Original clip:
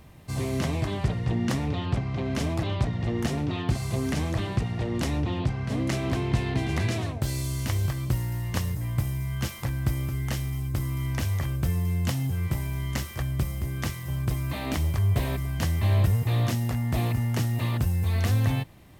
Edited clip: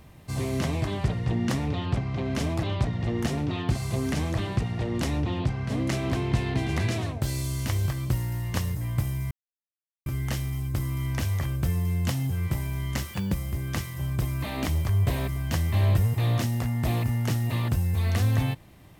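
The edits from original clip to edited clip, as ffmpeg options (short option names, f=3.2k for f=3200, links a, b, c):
-filter_complex "[0:a]asplit=5[a][b][c][d][e];[a]atrim=end=9.31,asetpts=PTS-STARTPTS,afade=t=out:st=9.306:d=0.004:c=hsin[f];[b]atrim=start=9.31:end=10.06,asetpts=PTS-STARTPTS,volume=0[g];[c]atrim=start=10.06:end=13.144,asetpts=PTS-STARTPTS,afade=t=in:d=0.004:c=hsin[h];[d]atrim=start=13.14:end=13.42,asetpts=PTS-STARTPTS,asetrate=64827,aresample=44100[i];[e]atrim=start=13.416[j];[f][g][h]concat=n=3:v=0:a=1[k];[k][i]acrossfade=d=0.004:c1=hsin:c2=hsin[l];[l][j]acrossfade=d=0.004:c1=hsin:c2=hsin"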